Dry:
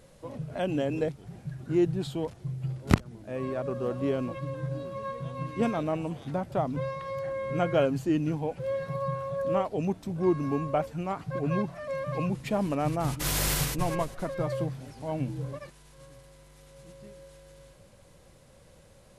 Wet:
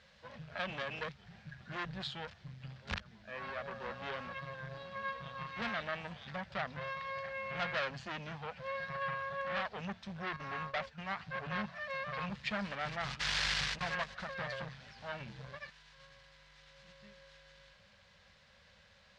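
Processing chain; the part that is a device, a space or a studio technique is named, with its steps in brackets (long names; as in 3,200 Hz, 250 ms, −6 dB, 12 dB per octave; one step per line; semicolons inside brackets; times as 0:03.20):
0:10.36–0:10.98: noise gate −33 dBFS, range −8 dB
scooped metal amplifier (tube saturation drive 29 dB, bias 0.7; loudspeaker in its box 79–4,600 Hz, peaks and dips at 120 Hz −9 dB, 210 Hz +10 dB, 1,700 Hz +6 dB; guitar amp tone stack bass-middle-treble 10-0-10)
level +8.5 dB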